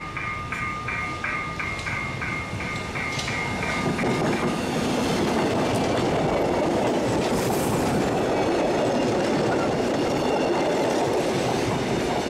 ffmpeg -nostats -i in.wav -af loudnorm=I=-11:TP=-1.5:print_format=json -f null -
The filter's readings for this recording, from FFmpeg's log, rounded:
"input_i" : "-24.0",
"input_tp" : "-12.2",
"input_lra" : "3.9",
"input_thresh" : "-34.0",